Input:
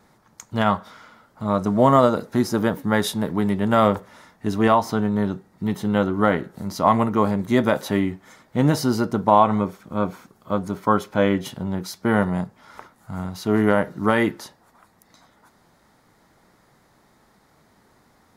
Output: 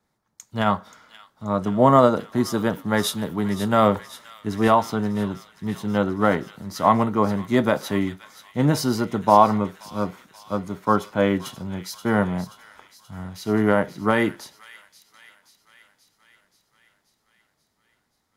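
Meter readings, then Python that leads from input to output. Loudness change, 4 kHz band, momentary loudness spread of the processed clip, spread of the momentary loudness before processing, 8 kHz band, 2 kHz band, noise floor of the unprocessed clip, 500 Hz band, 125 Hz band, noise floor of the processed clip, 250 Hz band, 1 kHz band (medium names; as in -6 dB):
-0.5 dB, +0.5 dB, 15 LU, 11 LU, +1.0 dB, -1.0 dB, -59 dBFS, -0.5 dB, -1.5 dB, -72 dBFS, -1.5 dB, 0.0 dB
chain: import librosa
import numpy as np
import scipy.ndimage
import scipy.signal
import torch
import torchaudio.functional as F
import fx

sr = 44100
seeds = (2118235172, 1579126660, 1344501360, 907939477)

y = fx.echo_wet_highpass(x, sr, ms=530, feedback_pct=72, hz=2100.0, wet_db=-9)
y = fx.band_widen(y, sr, depth_pct=40)
y = F.gain(torch.from_numpy(y), -1.5).numpy()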